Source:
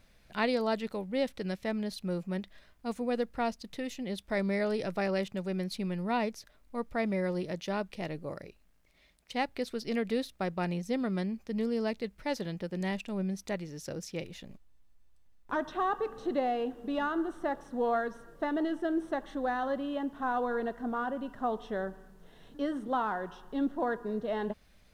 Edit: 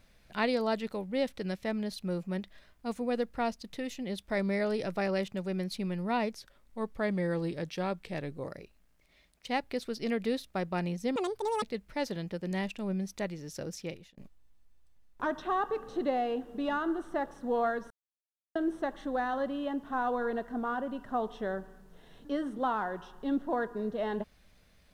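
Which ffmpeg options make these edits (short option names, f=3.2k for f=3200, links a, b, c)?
-filter_complex "[0:a]asplit=8[a][b][c][d][e][f][g][h];[a]atrim=end=6.374[i];[b]atrim=start=6.37:end=8.33,asetpts=PTS-STARTPTS,asetrate=41013,aresample=44100[j];[c]atrim=start=8.326:end=11.014[k];[d]atrim=start=11.01:end=11.92,asetpts=PTS-STARTPTS,asetrate=85995,aresample=44100[l];[e]atrim=start=11.916:end=14.47,asetpts=PTS-STARTPTS,afade=t=out:st=2.204:d=0.35[m];[f]atrim=start=14.47:end=18.2,asetpts=PTS-STARTPTS,afade=t=in:d=0.004:c=hsin,afade=t=out:st=3.726:d=0.004:c=hsin[n];[g]atrim=start=18.2:end=18.85,asetpts=PTS-STARTPTS,volume=0[o];[h]atrim=start=18.85,asetpts=PTS-STARTPTS,afade=t=in:d=0.004:c=hsin[p];[i][j]acrossfade=d=0.004:c1=hsin:c2=hsin[q];[q][k]acrossfade=d=0.004:c1=hsin:c2=hsin[r];[r][l]acrossfade=d=0.004:c1=hsin:c2=hsin[s];[m][n][o][p]concat=n=4:v=0:a=1[t];[s][t]acrossfade=d=0.004:c1=hsin:c2=hsin"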